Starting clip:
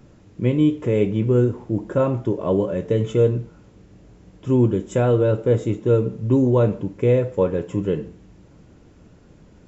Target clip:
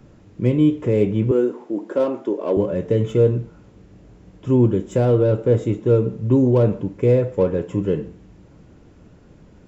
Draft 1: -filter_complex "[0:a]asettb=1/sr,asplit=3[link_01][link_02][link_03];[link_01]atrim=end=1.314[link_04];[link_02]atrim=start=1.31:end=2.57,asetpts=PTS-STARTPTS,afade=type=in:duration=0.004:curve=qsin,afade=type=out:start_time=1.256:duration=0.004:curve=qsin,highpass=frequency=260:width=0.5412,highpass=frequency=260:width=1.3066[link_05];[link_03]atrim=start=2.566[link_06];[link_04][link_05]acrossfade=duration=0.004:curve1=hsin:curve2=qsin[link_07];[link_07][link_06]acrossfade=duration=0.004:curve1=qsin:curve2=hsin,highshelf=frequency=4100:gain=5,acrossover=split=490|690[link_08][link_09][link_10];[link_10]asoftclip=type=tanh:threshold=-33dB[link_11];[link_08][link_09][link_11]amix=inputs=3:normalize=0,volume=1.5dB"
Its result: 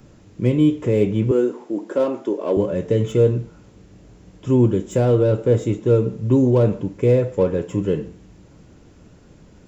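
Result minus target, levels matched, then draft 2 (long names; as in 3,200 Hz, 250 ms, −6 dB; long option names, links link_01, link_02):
8,000 Hz band +6.0 dB
-filter_complex "[0:a]asettb=1/sr,asplit=3[link_01][link_02][link_03];[link_01]atrim=end=1.314[link_04];[link_02]atrim=start=1.31:end=2.57,asetpts=PTS-STARTPTS,afade=type=in:duration=0.004:curve=qsin,afade=type=out:start_time=1.256:duration=0.004:curve=qsin,highpass=frequency=260:width=0.5412,highpass=frequency=260:width=1.3066[link_05];[link_03]atrim=start=2.566[link_06];[link_04][link_05]acrossfade=duration=0.004:curve1=hsin:curve2=qsin[link_07];[link_07][link_06]acrossfade=duration=0.004:curve1=qsin:curve2=hsin,highshelf=frequency=4100:gain=-4.5,acrossover=split=490|690[link_08][link_09][link_10];[link_10]asoftclip=type=tanh:threshold=-33dB[link_11];[link_08][link_09][link_11]amix=inputs=3:normalize=0,volume=1.5dB"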